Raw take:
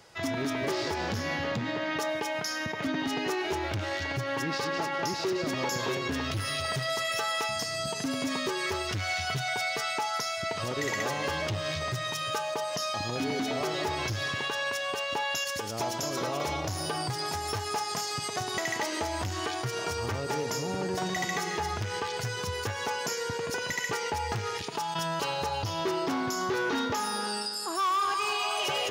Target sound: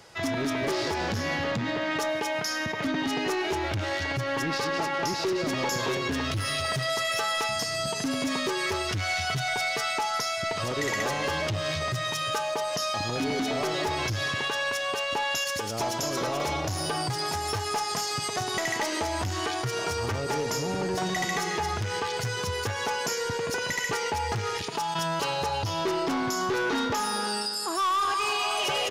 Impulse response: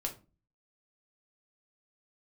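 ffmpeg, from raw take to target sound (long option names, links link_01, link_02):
-af "aeval=exprs='0.133*(cos(1*acos(clip(val(0)/0.133,-1,1)))-cos(1*PI/2))+0.00531*(cos(2*acos(clip(val(0)/0.133,-1,1)))-cos(2*PI/2))+0.015*(cos(5*acos(clip(val(0)/0.133,-1,1)))-cos(5*PI/2))':channel_layout=same,aresample=32000,aresample=44100"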